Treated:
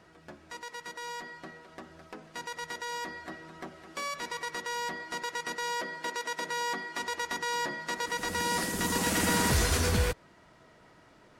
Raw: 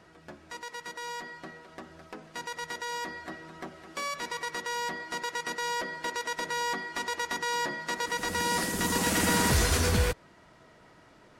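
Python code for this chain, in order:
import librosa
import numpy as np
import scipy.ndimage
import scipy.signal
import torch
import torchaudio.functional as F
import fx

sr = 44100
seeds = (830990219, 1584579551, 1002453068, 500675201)

y = fx.highpass(x, sr, hz=130.0, slope=12, at=(5.64, 7.0))
y = F.gain(torch.from_numpy(y), -1.5).numpy()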